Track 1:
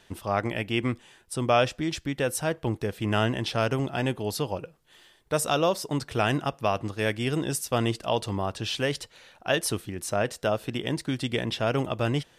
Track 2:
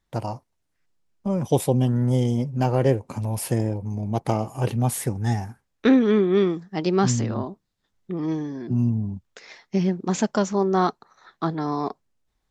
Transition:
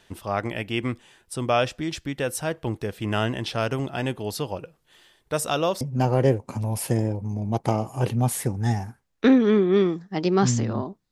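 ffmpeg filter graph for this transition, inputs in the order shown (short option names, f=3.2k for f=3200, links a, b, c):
-filter_complex "[0:a]apad=whole_dur=11.11,atrim=end=11.11,atrim=end=5.812[a];[1:a]atrim=start=2.418:end=7.72[b];[a][b]acrossfade=d=0.004:c1=hsin:c2=hsin"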